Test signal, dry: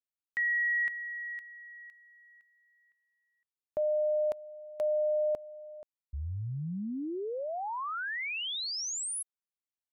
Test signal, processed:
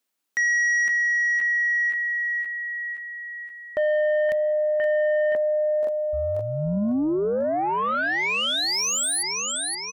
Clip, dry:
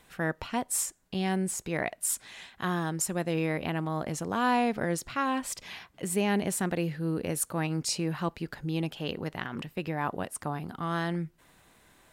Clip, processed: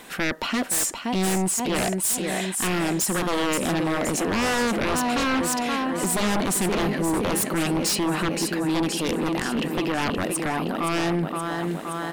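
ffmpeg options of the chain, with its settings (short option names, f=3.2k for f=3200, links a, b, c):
-filter_complex "[0:a]lowshelf=f=160:t=q:w=1.5:g=-11,asplit=2[a][b];[b]aecho=0:1:522|1044|1566|2088|2610|3132|3654:0.335|0.191|0.109|0.062|0.0354|0.0202|0.0115[c];[a][c]amix=inputs=2:normalize=0,aeval=exprs='0.2*sin(PI/2*4.47*val(0)/0.2)':c=same,alimiter=limit=-18.5dB:level=0:latency=1:release=16,volume=-1dB"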